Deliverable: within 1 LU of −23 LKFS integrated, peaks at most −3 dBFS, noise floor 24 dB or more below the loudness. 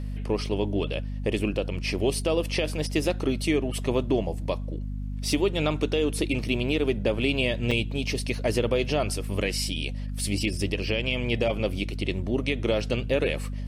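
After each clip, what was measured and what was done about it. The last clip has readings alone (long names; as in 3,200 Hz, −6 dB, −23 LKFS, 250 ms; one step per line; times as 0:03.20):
number of dropouts 1; longest dropout 4.9 ms; mains hum 50 Hz; hum harmonics up to 250 Hz; level of the hum −29 dBFS; integrated loudness −27.0 LKFS; sample peak −12.0 dBFS; target loudness −23.0 LKFS
→ repair the gap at 0:07.71, 4.9 ms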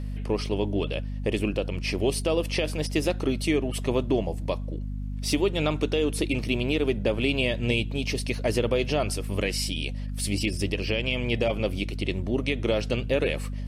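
number of dropouts 0; mains hum 50 Hz; hum harmonics up to 250 Hz; level of the hum −29 dBFS
→ mains-hum notches 50/100/150/200/250 Hz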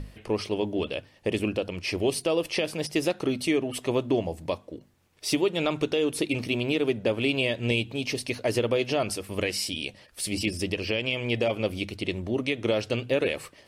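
mains hum none found; integrated loudness −28.0 LKFS; sample peak −13.0 dBFS; target loudness −23.0 LKFS
→ level +5 dB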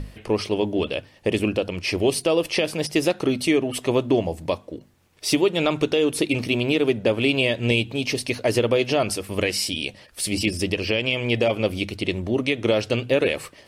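integrated loudness −23.0 LKFS; sample peak −8.0 dBFS; background noise floor −52 dBFS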